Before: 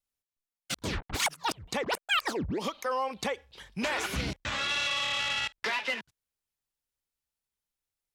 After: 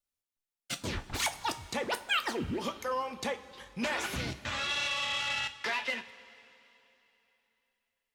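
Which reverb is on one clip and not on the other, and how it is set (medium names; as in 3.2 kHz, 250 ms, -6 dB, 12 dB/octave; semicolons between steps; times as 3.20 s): two-slope reverb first 0.25 s, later 3.2 s, from -19 dB, DRR 7 dB; trim -3 dB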